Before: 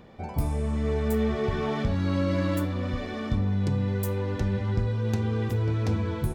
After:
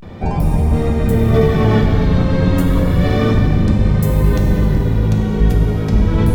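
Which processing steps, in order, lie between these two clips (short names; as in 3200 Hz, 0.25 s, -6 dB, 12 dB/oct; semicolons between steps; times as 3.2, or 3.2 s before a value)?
octaver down 1 oct, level +4 dB; in parallel at +2.5 dB: negative-ratio compressor -28 dBFS, ratio -1; on the sum: vibrato 0.32 Hz 84 cents; bell 170 Hz +4.5 dB 0.34 oct; plate-style reverb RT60 3.6 s, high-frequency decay 0.9×, DRR 0.5 dB; gain +1.5 dB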